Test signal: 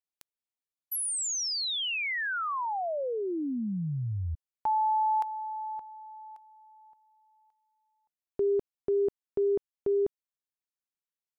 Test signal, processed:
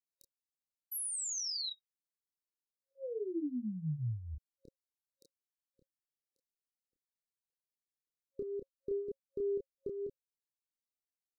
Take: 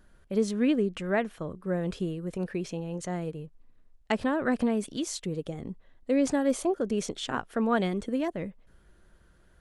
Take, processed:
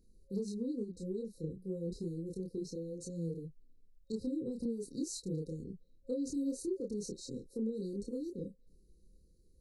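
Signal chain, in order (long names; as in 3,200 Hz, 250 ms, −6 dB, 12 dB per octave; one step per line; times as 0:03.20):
brick-wall band-stop 540–3,800 Hz
downward compressor, threshold −28 dBFS
multi-voice chorus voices 4, 0.26 Hz, delay 28 ms, depth 4.2 ms
level −3 dB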